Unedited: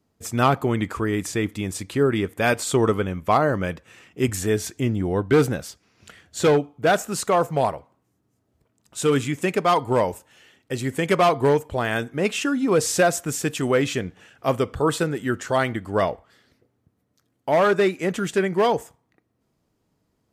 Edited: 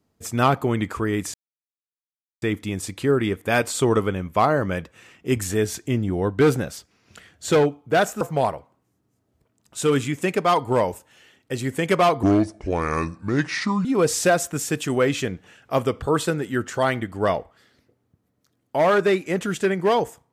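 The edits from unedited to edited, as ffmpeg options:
ffmpeg -i in.wav -filter_complex "[0:a]asplit=5[link_01][link_02][link_03][link_04][link_05];[link_01]atrim=end=1.34,asetpts=PTS-STARTPTS,afade=type=out:start_time=1.336:duration=0.004:curve=hsin,apad=pad_dur=1.08[link_06];[link_02]atrim=start=1.34:end=7.132,asetpts=PTS-STARTPTS,afade=type=in:duration=0.004:curve=hsin[link_07];[link_03]atrim=start=7.408:end=11.434[link_08];[link_04]atrim=start=11.43:end=12.58,asetpts=PTS-STARTPTS,asetrate=31311,aresample=44100[link_09];[link_05]atrim=start=12.576[link_10];[link_06][link_07]concat=n=2:v=0:a=1[link_11];[link_11][link_08]acrossfade=duration=0.004:curve1=hsin:curve2=hsin[link_12];[link_12][link_09]acrossfade=duration=0.004:curve1=hsin:curve2=hsin[link_13];[link_13][link_10]acrossfade=duration=0.004:curve1=hsin:curve2=hsin" out.wav

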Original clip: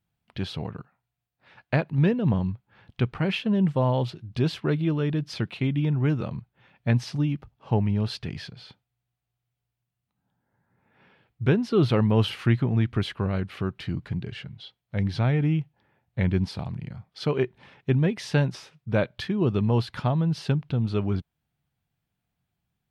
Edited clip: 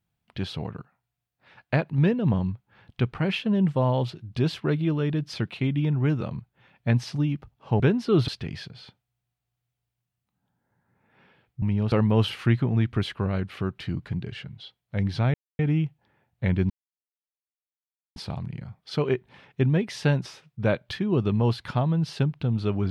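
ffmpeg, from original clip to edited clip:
ffmpeg -i in.wav -filter_complex "[0:a]asplit=7[link_01][link_02][link_03][link_04][link_05][link_06][link_07];[link_01]atrim=end=7.802[link_08];[link_02]atrim=start=11.438:end=11.922[link_09];[link_03]atrim=start=8.098:end=11.442[link_10];[link_04]atrim=start=7.798:end=8.102[link_11];[link_05]atrim=start=11.918:end=15.34,asetpts=PTS-STARTPTS,afade=type=out:start_time=3.418:duration=0.004:curve=hsin,apad=pad_dur=0.25[link_12];[link_06]atrim=start=15.34:end=16.45,asetpts=PTS-STARTPTS,afade=type=in:duration=0.004:curve=hsin,afade=type=out:start_time=1.106:duration=0.004:curve=hsin,apad=pad_dur=1.46[link_13];[link_07]atrim=start=16.45,asetpts=PTS-STARTPTS,afade=type=in:duration=0.004:curve=hsin[link_14];[link_08][link_09]acrossfade=duration=0.004:curve1=hsin:curve2=hsin[link_15];[link_15][link_10]acrossfade=duration=0.004:curve1=hsin:curve2=hsin[link_16];[link_16][link_11]acrossfade=duration=0.004:curve1=hsin:curve2=hsin[link_17];[link_12][link_13][link_14]concat=n=3:v=0:a=1[link_18];[link_17][link_18]acrossfade=duration=0.004:curve1=hsin:curve2=hsin" out.wav

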